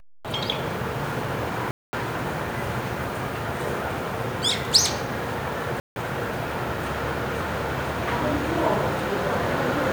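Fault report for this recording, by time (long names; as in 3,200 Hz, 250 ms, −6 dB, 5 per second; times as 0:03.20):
0:01.71–0:01.93: drop-out 220 ms
0:05.80–0:05.96: drop-out 161 ms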